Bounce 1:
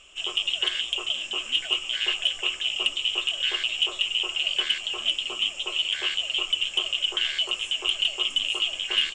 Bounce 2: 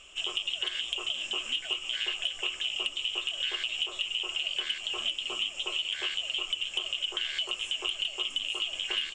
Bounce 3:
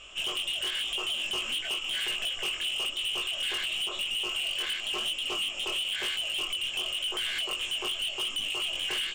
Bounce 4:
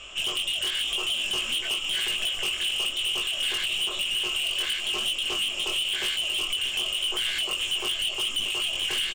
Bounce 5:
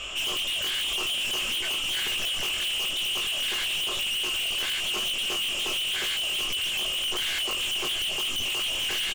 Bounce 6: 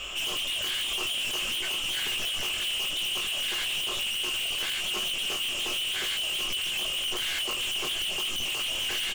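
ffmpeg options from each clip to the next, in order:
ffmpeg -i in.wav -af "acompressor=threshold=-29dB:ratio=4" out.wav
ffmpeg -i in.wav -af "flanger=delay=18.5:depth=4.2:speed=0.97,highshelf=frequency=7100:gain=-9,asoftclip=type=hard:threshold=-36.5dB,volume=8.5dB" out.wav
ffmpeg -i in.wav -filter_complex "[0:a]acrossover=split=250|3000[link_01][link_02][link_03];[link_02]acompressor=threshold=-46dB:ratio=1.5[link_04];[link_01][link_04][link_03]amix=inputs=3:normalize=0,aecho=1:1:634|1268|1902|2536|3170|3804:0.251|0.133|0.0706|0.0374|0.0198|0.0105,volume=5.5dB" out.wav
ffmpeg -i in.wav -af "asoftclip=type=tanh:threshold=-34.5dB,volume=8dB" out.wav
ffmpeg -i in.wav -af "acrusher=bits=5:mode=log:mix=0:aa=0.000001,flanger=delay=5.4:depth=3.3:regen=-64:speed=0.61:shape=sinusoidal,volume=3dB" out.wav

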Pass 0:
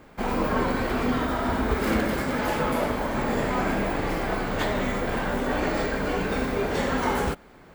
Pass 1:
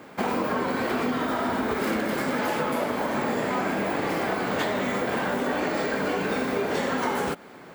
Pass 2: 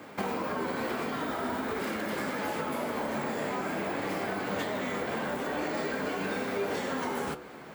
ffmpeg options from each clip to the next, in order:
ffmpeg -i in.wav -af "highpass=170,acompressor=threshold=-29dB:ratio=6,volume=6dB" out.wav
ffmpeg -i in.wav -filter_complex "[0:a]bandreject=frequency=61.79:width_type=h:width=4,bandreject=frequency=123.58:width_type=h:width=4,bandreject=frequency=185.37:width_type=h:width=4,bandreject=frequency=247.16:width_type=h:width=4,bandreject=frequency=308.95:width_type=h:width=4,bandreject=frequency=370.74:width_type=h:width=4,bandreject=frequency=432.53:width_type=h:width=4,bandreject=frequency=494.32:width_type=h:width=4,bandreject=frequency=556.11:width_type=h:width=4,bandreject=frequency=617.9:width_type=h:width=4,bandreject=frequency=679.69:width_type=h:width=4,bandreject=frequency=741.48:width_type=h:width=4,bandreject=frequency=803.27:width_type=h:width=4,bandreject=frequency=865.06:width_type=h:width=4,bandreject=frequency=926.85:width_type=h:width=4,bandreject=frequency=988.64:width_type=h:width=4,bandreject=frequency=1050.43:width_type=h:width=4,bandreject=frequency=1112.22:width_type=h:width=4,bandreject=frequency=1174.01:width_type=h:width=4,bandreject=frequency=1235.8:width_type=h:width=4,bandreject=frequency=1297.59:width_type=h:width=4,bandreject=frequency=1359.38:width_type=h:width=4,bandreject=frequency=1421.17:width_type=h:width=4,bandreject=frequency=1482.96:width_type=h:width=4,bandreject=frequency=1544.75:width_type=h:width=4,bandreject=frequency=1606.54:width_type=h:width=4,bandreject=frequency=1668.33:width_type=h:width=4,bandreject=frequency=1730.12:width_type=h:width=4,bandreject=frequency=1791.91:width_type=h:width=4,bandreject=frequency=1853.7:width_type=h:width=4,acrossover=split=540|6700[link_01][link_02][link_03];[link_01]acompressor=threshold=-34dB:ratio=4[link_04];[link_02]acompressor=threshold=-34dB:ratio=4[link_05];[link_03]acompressor=threshold=-46dB:ratio=4[link_06];[link_04][link_05][link_06]amix=inputs=3:normalize=0,flanger=delay=9.9:depth=3.9:regen=68:speed=0.46:shape=sinusoidal,volume=4dB" out.wav

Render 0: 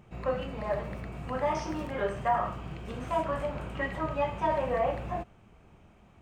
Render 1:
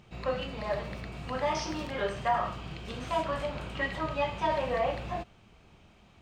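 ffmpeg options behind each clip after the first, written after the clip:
ffmpeg -i in.wav -af "equalizer=frequency=4200:width=0.95:gain=12.5,volume=-1.5dB" out.wav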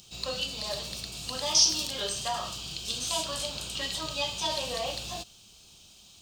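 ffmpeg -i in.wav -af "aexciter=amount=13.1:drive=7.2:freq=3200,volume=-5.5dB" out.wav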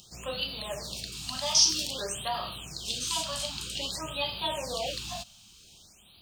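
ffmpeg -i in.wav -af "afftfilt=real='re*(1-between(b*sr/1024,370*pow(7100/370,0.5+0.5*sin(2*PI*0.52*pts/sr))/1.41,370*pow(7100/370,0.5+0.5*sin(2*PI*0.52*pts/sr))*1.41))':imag='im*(1-between(b*sr/1024,370*pow(7100/370,0.5+0.5*sin(2*PI*0.52*pts/sr))/1.41,370*pow(7100/370,0.5+0.5*sin(2*PI*0.52*pts/sr))*1.41))':win_size=1024:overlap=0.75" out.wav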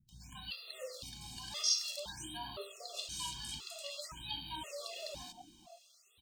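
ffmpeg -i in.wav -filter_complex "[0:a]acrossover=split=230|780[link_01][link_02][link_03];[link_03]adelay=90[link_04];[link_02]adelay=550[link_05];[link_01][link_05][link_04]amix=inputs=3:normalize=0,afftfilt=real='re*gt(sin(2*PI*0.97*pts/sr)*(1-2*mod(floor(b*sr/1024/360),2)),0)':imag='im*gt(sin(2*PI*0.97*pts/sr)*(1-2*mod(floor(b*sr/1024/360),2)),0)':win_size=1024:overlap=0.75,volume=-6.5dB" out.wav

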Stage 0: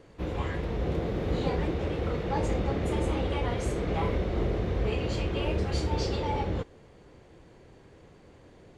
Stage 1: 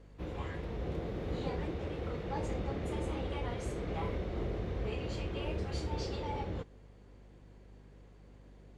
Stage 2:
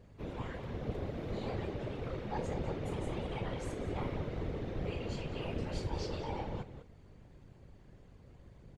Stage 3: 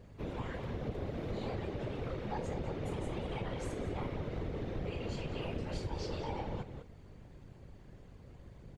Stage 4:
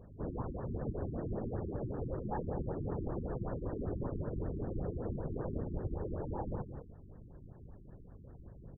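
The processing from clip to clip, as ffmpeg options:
ffmpeg -i in.wav -af "aeval=exprs='val(0)+0.00447*(sin(2*PI*50*n/s)+sin(2*PI*2*50*n/s)/2+sin(2*PI*3*50*n/s)/3+sin(2*PI*4*50*n/s)/4+sin(2*PI*5*50*n/s)/5)':channel_layout=same,volume=-8dB" out.wav
ffmpeg -i in.wav -filter_complex "[0:a]asplit=2[link_01][link_02];[link_02]adelay=198.3,volume=-10dB,highshelf=frequency=4000:gain=-4.46[link_03];[link_01][link_03]amix=inputs=2:normalize=0,afftfilt=real='hypot(re,im)*cos(2*PI*random(0))':imag='hypot(re,im)*sin(2*PI*random(1))':win_size=512:overlap=0.75,volume=4.5dB" out.wav
ffmpeg -i in.wav -af "acompressor=threshold=-38dB:ratio=3,volume=3dB" out.wav
ffmpeg -i in.wav -af "afftfilt=real='re*lt(b*sr/1024,380*pow(1900/380,0.5+0.5*sin(2*PI*5.2*pts/sr)))':imag='im*lt(b*sr/1024,380*pow(1900/380,0.5+0.5*sin(2*PI*5.2*pts/sr)))':win_size=1024:overlap=0.75,volume=1dB" out.wav

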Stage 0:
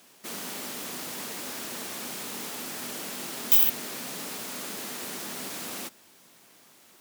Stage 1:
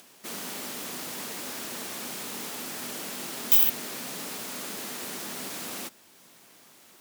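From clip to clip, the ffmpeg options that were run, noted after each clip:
ffmpeg -i in.wav -af "acompressor=mode=upward:threshold=-50dB:ratio=2.5" out.wav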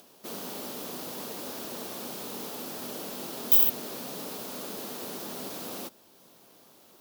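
ffmpeg -i in.wav -af "equalizer=frequency=500:width_type=o:width=1:gain=4,equalizer=frequency=2000:width_type=o:width=1:gain=-9,equalizer=frequency=8000:width_type=o:width=1:gain=-7" out.wav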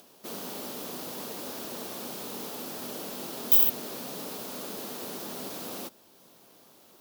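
ffmpeg -i in.wav -af anull out.wav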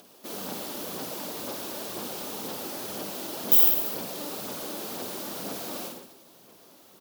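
ffmpeg -i in.wav -af "aecho=1:1:50|107.5|173.6|249.7|337.1:0.631|0.398|0.251|0.158|0.1,aphaser=in_gain=1:out_gain=1:delay=3.5:decay=0.31:speed=2:type=sinusoidal" out.wav

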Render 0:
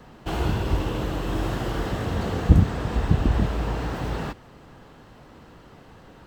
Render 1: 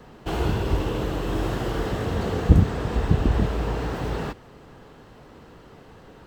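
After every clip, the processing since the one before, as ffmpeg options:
ffmpeg -i in.wav -af "equalizer=frequency=430:width=3.3:gain=4.5" out.wav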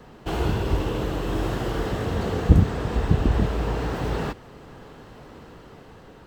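ffmpeg -i in.wav -af "dynaudnorm=framelen=440:gausssize=7:maxgain=6dB" out.wav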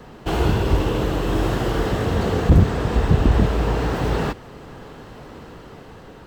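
ffmpeg -i in.wav -af "asoftclip=type=hard:threshold=-12dB,volume=5dB" out.wav

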